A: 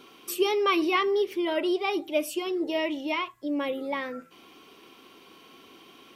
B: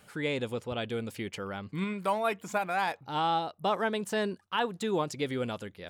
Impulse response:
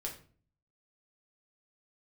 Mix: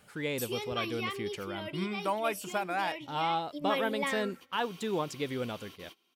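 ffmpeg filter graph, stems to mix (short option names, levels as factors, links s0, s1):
-filter_complex "[0:a]highshelf=f=2000:g=11,adelay=100,volume=0.562,afade=t=in:st=3.33:d=0.4:silence=0.298538,asplit=2[s0][s1];[s1]volume=0.0631[s2];[1:a]volume=0.75,asplit=2[s3][s4];[s4]apad=whole_len=275838[s5];[s0][s5]sidechaingate=range=0.0224:threshold=0.00355:ratio=16:detection=peak[s6];[s2]aecho=0:1:80|160|240|320|400|480|560|640|720:1|0.59|0.348|0.205|0.121|0.0715|0.0422|0.0249|0.0147[s7];[s6][s3][s7]amix=inputs=3:normalize=0"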